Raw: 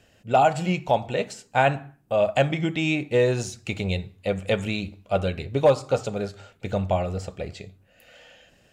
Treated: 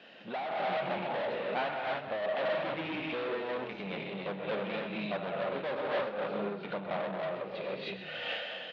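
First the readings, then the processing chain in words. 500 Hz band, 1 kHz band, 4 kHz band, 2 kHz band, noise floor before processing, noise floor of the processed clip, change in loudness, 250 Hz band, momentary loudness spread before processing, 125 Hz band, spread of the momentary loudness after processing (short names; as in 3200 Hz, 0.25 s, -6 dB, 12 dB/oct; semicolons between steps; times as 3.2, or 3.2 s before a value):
-9.5 dB, -9.5 dB, -5.5 dB, -6.0 dB, -60 dBFS, -44 dBFS, -10.5 dB, -11.0 dB, 12 LU, -19.0 dB, 6 LU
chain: non-linear reverb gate 0.34 s rising, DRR -1 dB; hard clip -21.5 dBFS, distortion -6 dB; treble ducked by the level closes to 2300 Hz, closed at -24 dBFS; compressor 6:1, threshold -40 dBFS, peak gain reduction 15.5 dB; sample leveller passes 2; elliptic band-pass 190–3800 Hz, stop band 40 dB; AGC gain up to 4 dB; low shelf 380 Hz -8 dB; on a send: frequency-shifting echo 0.128 s, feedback 32%, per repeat -35 Hz, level -9.5 dB; on the sum: noise-modulated level, depth 60%; gain +4.5 dB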